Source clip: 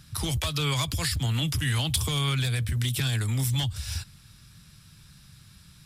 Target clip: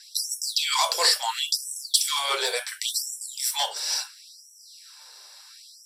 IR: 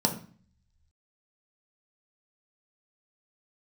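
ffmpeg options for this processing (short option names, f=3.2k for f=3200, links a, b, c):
-filter_complex "[0:a]aeval=exprs='0.224*(cos(1*acos(clip(val(0)/0.224,-1,1)))-cos(1*PI/2))+0.00251*(cos(5*acos(clip(val(0)/0.224,-1,1)))-cos(5*PI/2))':c=same[a];[1:a]atrim=start_sample=2205,afade=t=out:st=0.14:d=0.01,atrim=end_sample=6615[b];[a][b]afir=irnorm=-1:irlink=0,afftfilt=real='re*gte(b*sr/1024,350*pow(5500/350,0.5+0.5*sin(2*PI*0.72*pts/sr)))':imag='im*gte(b*sr/1024,350*pow(5500/350,0.5+0.5*sin(2*PI*0.72*pts/sr)))':win_size=1024:overlap=0.75"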